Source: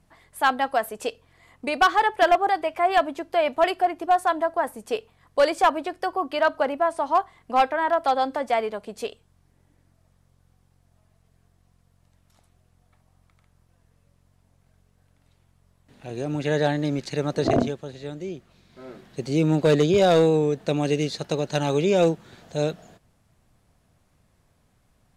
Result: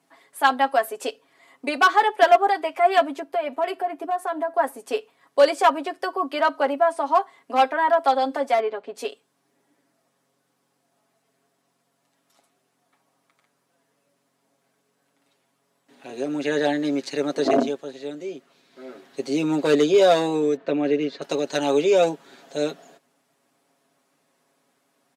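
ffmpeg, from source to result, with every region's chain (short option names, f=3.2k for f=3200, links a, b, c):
-filter_complex "[0:a]asettb=1/sr,asplit=3[a][b][c];[a]atrim=end=3.204[d];[b]atrim=start=3.2:end=4.55,asetpts=PTS-STARTPTS,afade=t=in:d=0.004:c=qsin,afade=t=out:st=1.346:d=0.004:c=qsin,equalizer=f=5.2k:w=0.51:g=-6.5,acompressor=threshold=-25dB:ratio=2.5:attack=3.2:release=140:knee=1:detection=peak[e];[c]atrim=start=4.546[f];[d][e]acrossfade=d=0.004:c1=hsin:c2=qsin[g];[g][f]acrossfade=d=0.004:c1=qsin:c2=hsin,asettb=1/sr,asplit=3[h][i][j];[h]atrim=end=8.544[k];[i]atrim=start=8.54:end=8.95,asetpts=PTS-STARTPTS,afade=t=in:d=0.004:c=qsin,afade=t=out:st=0.406:d=0.004:c=qsin,lowpass=3.2k,asoftclip=type=hard:threshold=-18.5dB[l];[j]atrim=start=8.946[m];[k][l]acrossfade=d=0.004:c1=hsin:c2=qsin[n];[n][m]acrossfade=d=0.004:c1=qsin:c2=hsin,asettb=1/sr,asplit=3[o][p][q];[o]atrim=end=20.564[r];[p]atrim=start=20.56:end=21.22,asetpts=PTS-STARTPTS,afade=t=in:d=0.004:c=qsin,afade=t=out:st=0.656:d=0.004:c=qsin,lowpass=2.4k,bandreject=f=810:w=9.5[s];[q]atrim=start=21.216[t];[r][s]acrossfade=d=0.004:c1=hsin:c2=qsin[u];[u][t]acrossfade=d=0.004:c1=qsin:c2=hsin,highpass=f=240:w=0.5412,highpass=f=240:w=1.3066,aecho=1:1:7.3:0.7"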